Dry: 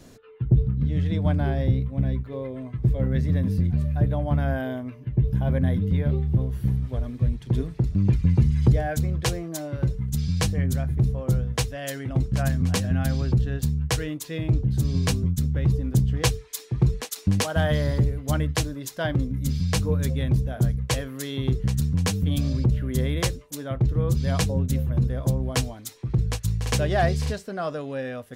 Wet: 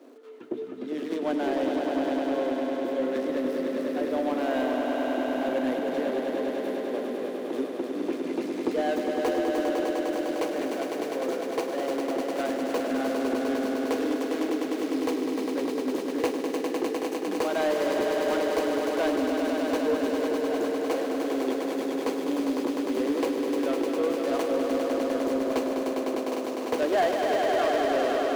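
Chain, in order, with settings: median filter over 25 samples; Chebyshev high-pass 270 Hz, order 5; swelling echo 0.101 s, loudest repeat 5, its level -6.5 dB; soft clip -20.5 dBFS, distortion -20 dB; gain +4 dB

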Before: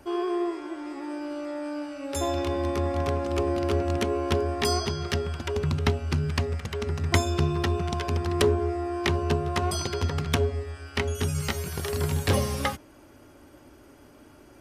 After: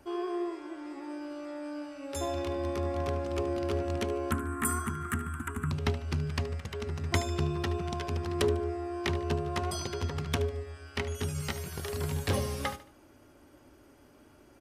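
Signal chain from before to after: 4.31–5.71 EQ curve 140 Hz 0 dB, 280 Hz +8 dB, 530 Hz -23 dB, 1300 Hz +12 dB, 5100 Hz -24 dB, 8000 Hz +12 dB; feedback echo 74 ms, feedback 35%, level -14.5 dB; gain -6 dB

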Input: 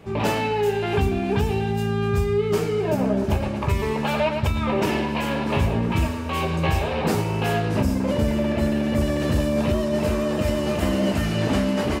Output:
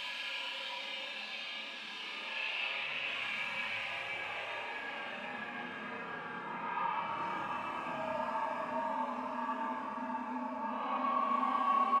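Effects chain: HPF 190 Hz 12 dB/oct; bell 410 Hz -8 dB 0.24 oct; in parallel at -3 dB: negative-ratio compressor -28 dBFS; on the sum: band-pass sweep 3400 Hz -> 1000 Hz, 5.44–6.01; on a send: flutter echo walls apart 9.7 m, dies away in 0.84 s; on the sum: flange 0.49 Hz, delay 7.7 ms, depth 2 ms, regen +74%; Paulstretch 11×, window 0.05 s, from 5.31; doubler 28 ms -4.5 dB; gain -4.5 dB

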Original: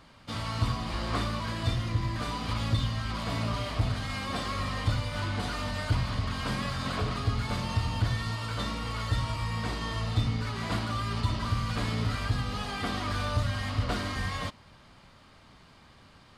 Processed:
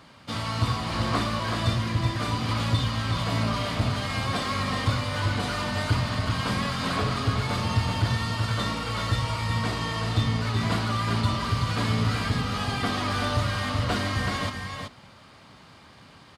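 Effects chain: HPF 86 Hz 12 dB/oct; on a send: echo 0.378 s -5.5 dB; on the sum: gain +4.5 dB

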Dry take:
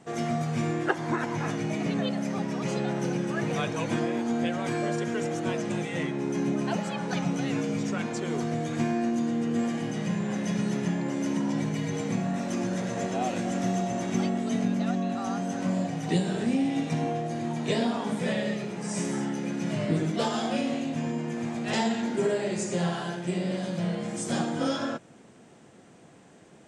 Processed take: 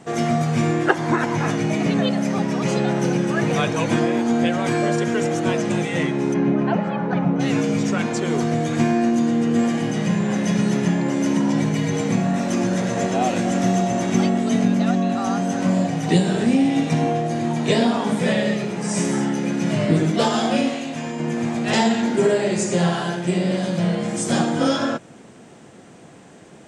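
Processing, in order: 6.33–7.39 LPF 2500 Hz -> 1300 Hz 12 dB/oct; 20.69–21.2 low shelf 430 Hz -10 dB; gain +8.5 dB

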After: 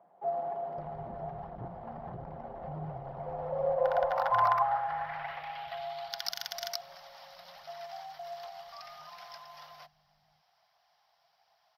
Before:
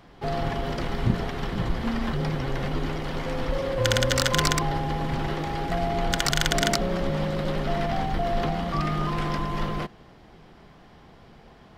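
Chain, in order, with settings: EQ curve 170 Hz 0 dB, 280 Hz -24 dB, 450 Hz -9 dB, 700 Hz +13 dB, 1100 Hz +3 dB, 2100 Hz -3 dB, 3100 Hz -6 dB, 5400 Hz -5 dB, 7900 Hz -29 dB, 13000 Hz +13 dB; phaser 1.3 Hz, delay 4 ms, feedback 26%; band-pass sweep 300 Hz -> 5700 Hz, 3.11–6.36; bands offset in time highs, lows 0.54 s, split 210 Hz; 1.49–2.62 core saturation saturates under 430 Hz

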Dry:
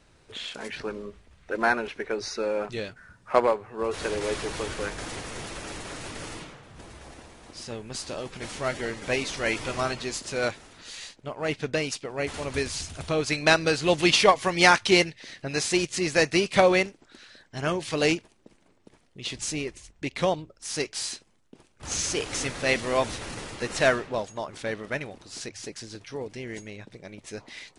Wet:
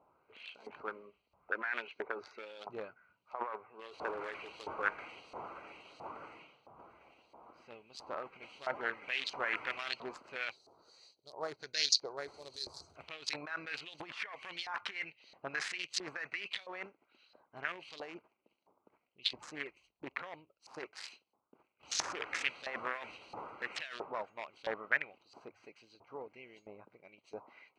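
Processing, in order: Wiener smoothing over 25 samples; 10.51–12.96 EQ curve 140 Hz 0 dB, 250 Hz -7 dB, 370 Hz +2 dB, 2800 Hz -17 dB, 4200 Hz +10 dB; negative-ratio compressor -31 dBFS, ratio -1; 11.62–12.13 spectral gain 1400–7000 Hz +10 dB; LFO band-pass saw up 1.5 Hz 850–4400 Hz; dynamic EQ 1800 Hz, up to +7 dB, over -54 dBFS, Q 0.93; gain +1.5 dB

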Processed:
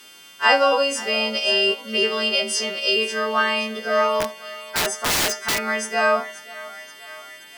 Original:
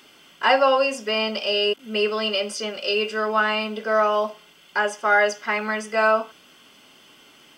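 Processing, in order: frequency quantiser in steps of 2 st; thinning echo 0.529 s, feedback 72%, high-pass 540 Hz, level -17.5 dB; 4.2–5.59 wrapped overs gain 15.5 dB

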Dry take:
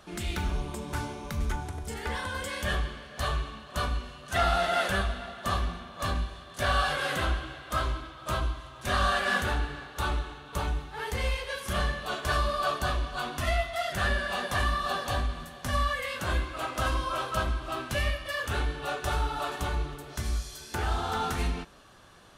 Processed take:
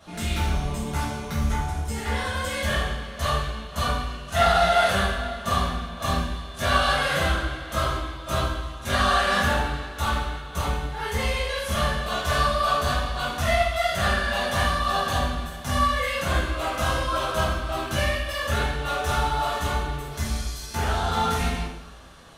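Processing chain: two-slope reverb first 0.69 s, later 1.8 s, DRR -9.5 dB; gain -4 dB

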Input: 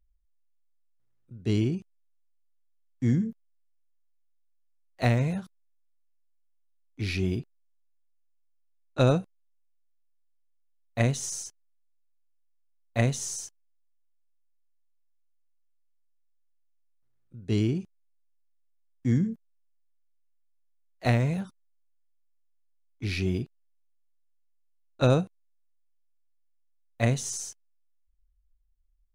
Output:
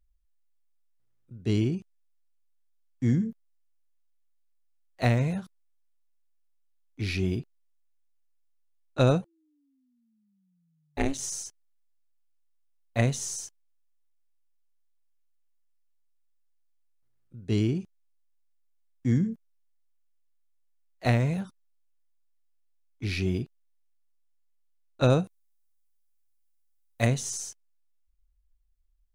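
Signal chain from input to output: 9.21–11.17 ring modulator 350 Hz -> 130 Hz; 25.24–27.07 high shelf 6000 Hz +11 dB

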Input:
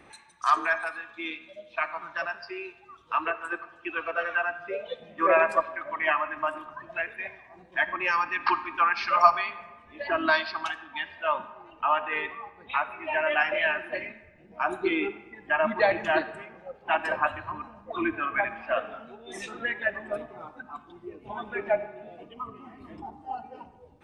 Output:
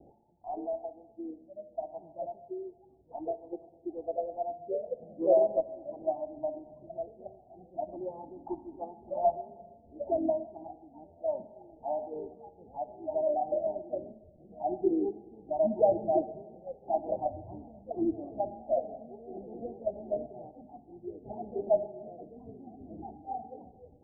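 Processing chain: steep low-pass 790 Hz 96 dB/oct

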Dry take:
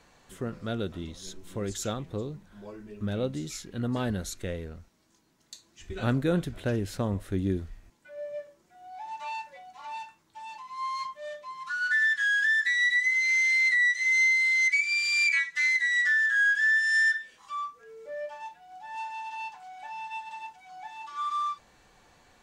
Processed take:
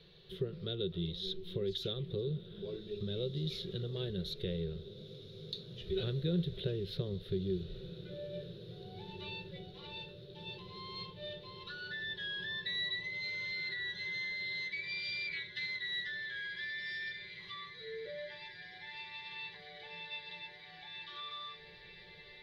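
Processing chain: compressor 3:1, threshold -36 dBFS, peak gain reduction 11.5 dB; EQ curve 110 Hz 0 dB, 170 Hz +11 dB, 260 Hz -20 dB, 380 Hz +10 dB, 820 Hz -16 dB, 2500 Hz -3 dB, 3700 Hz +13 dB, 7600 Hz -30 dB, 11000 Hz -11 dB; on a send: diffused feedback echo 1.898 s, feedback 67%, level -13 dB; on the sum: gain -1.5 dB

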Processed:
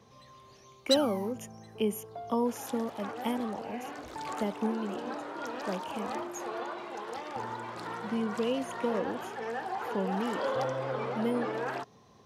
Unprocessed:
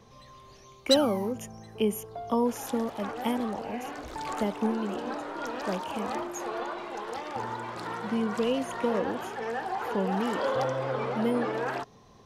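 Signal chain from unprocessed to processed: HPF 83 Hz; gain -3 dB

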